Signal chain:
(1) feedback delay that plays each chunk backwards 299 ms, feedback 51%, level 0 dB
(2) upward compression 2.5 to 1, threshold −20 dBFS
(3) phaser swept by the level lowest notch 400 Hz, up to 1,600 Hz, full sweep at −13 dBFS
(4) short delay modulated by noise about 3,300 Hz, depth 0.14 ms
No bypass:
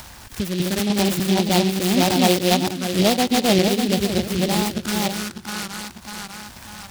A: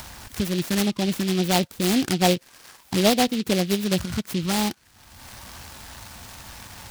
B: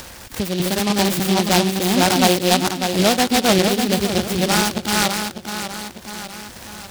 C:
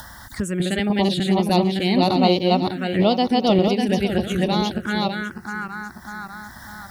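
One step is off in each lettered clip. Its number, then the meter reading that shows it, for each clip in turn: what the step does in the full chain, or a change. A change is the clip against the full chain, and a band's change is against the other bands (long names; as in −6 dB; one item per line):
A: 1, change in momentary loudness spread +4 LU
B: 3, 125 Hz band −3.0 dB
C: 4, 8 kHz band −13.0 dB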